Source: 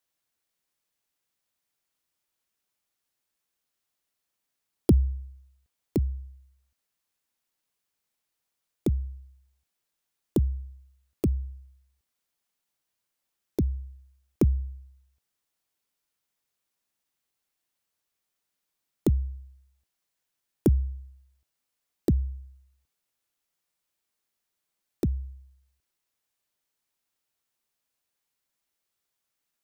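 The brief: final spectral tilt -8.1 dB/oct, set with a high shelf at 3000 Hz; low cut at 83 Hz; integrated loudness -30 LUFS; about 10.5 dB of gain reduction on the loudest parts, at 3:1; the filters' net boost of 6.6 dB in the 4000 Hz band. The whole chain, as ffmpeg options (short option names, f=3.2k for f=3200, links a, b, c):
-af "highpass=83,highshelf=f=3k:g=4,equalizer=f=4k:t=o:g=5,acompressor=threshold=-31dB:ratio=3,volume=9.5dB"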